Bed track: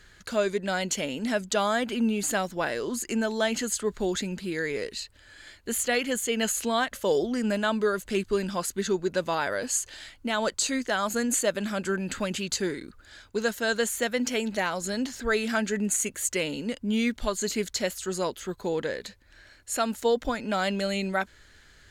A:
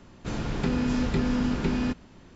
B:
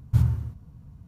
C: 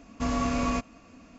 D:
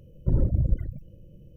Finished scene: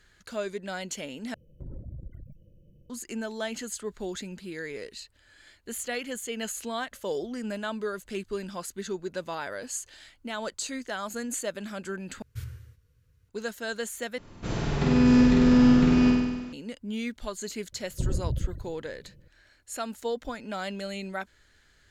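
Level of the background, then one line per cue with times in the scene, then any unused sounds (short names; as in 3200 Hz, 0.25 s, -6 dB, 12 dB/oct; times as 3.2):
bed track -7 dB
1.34 replace with D -8 dB + compressor 3:1, threshold -31 dBFS
12.22 replace with B -16.5 dB + EQ curve 110 Hz 0 dB, 200 Hz -15 dB, 500 Hz +9 dB, 720 Hz -17 dB, 1600 Hz +14 dB
14.18 replace with A -1 dB + flutter echo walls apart 8.3 m, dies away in 1.2 s
17.72 add D -6 dB
not used: C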